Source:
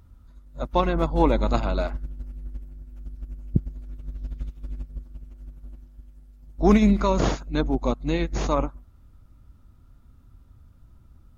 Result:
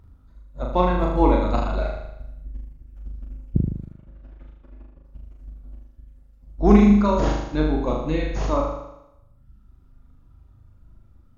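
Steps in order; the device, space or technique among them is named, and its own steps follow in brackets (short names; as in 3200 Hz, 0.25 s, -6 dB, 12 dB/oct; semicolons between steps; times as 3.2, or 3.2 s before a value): reverb removal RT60 1.2 s; behind a face mask (high shelf 3000 Hz -8 dB); 3.85–5.05 three-band isolator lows -13 dB, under 300 Hz, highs -16 dB, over 2900 Hz; flutter echo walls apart 6.7 m, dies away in 0.87 s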